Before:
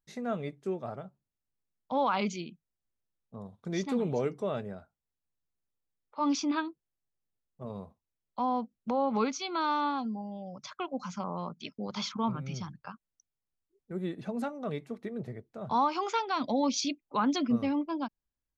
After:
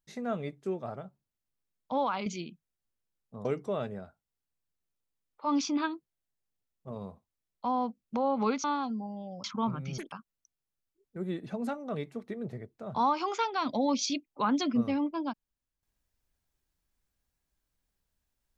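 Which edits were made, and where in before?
1.93–2.26 s: fade out, to -7 dB
3.45–4.19 s: delete
9.38–9.79 s: delete
10.59–12.05 s: delete
12.59–12.87 s: speed 197%

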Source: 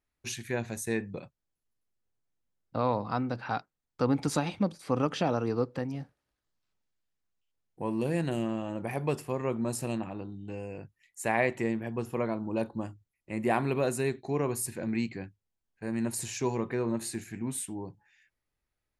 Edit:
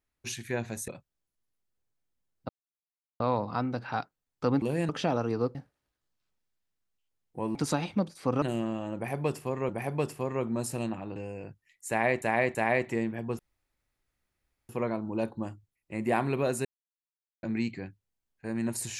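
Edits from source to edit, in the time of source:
0.88–1.16 s: delete
2.77 s: insert silence 0.71 s
4.19–5.06 s: swap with 7.98–8.25 s
5.72–5.98 s: delete
8.78–9.52 s: loop, 2 plays
10.25–10.50 s: delete
11.23–11.56 s: loop, 3 plays
12.07 s: insert room tone 1.30 s
14.03–14.81 s: mute

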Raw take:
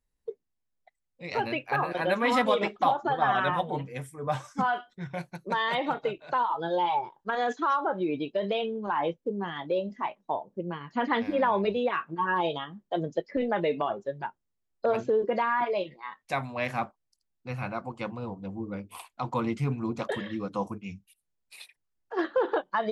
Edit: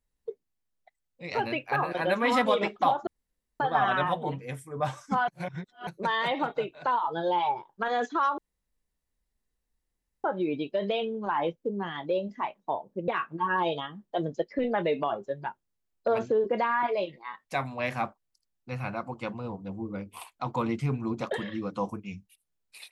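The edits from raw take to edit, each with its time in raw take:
3.07 s: insert room tone 0.53 s
4.75–5.34 s: reverse
7.85 s: insert room tone 1.86 s
10.69–11.86 s: delete

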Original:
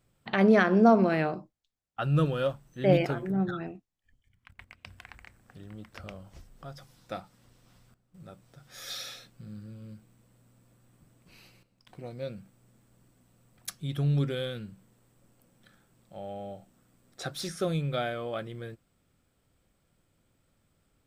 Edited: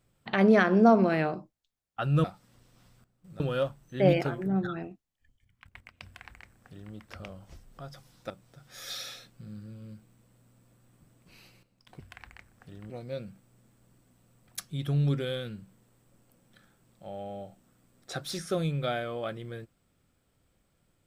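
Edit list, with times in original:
4.88–5.78 s: copy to 12.00 s
7.14–8.30 s: move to 2.24 s

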